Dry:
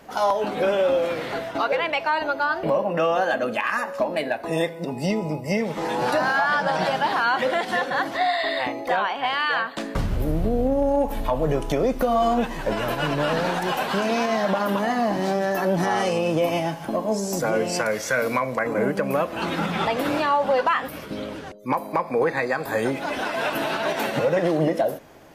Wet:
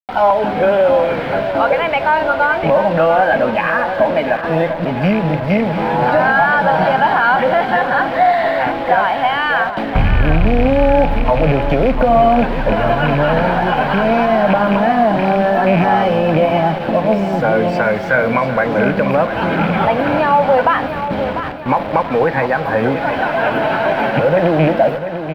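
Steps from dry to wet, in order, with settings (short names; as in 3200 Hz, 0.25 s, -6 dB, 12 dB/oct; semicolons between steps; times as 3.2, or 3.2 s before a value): rattling part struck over -25 dBFS, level -17 dBFS; notch 3700 Hz; comb 1.3 ms, depth 36%; in parallel at -6 dB: soft clip -22.5 dBFS, distortion -10 dB; on the sum: bit-crush 5-bit; air absorption 430 m; on a send: feedback echo 0.696 s, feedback 48%, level -10 dB; on the sum: gain +7.5 dB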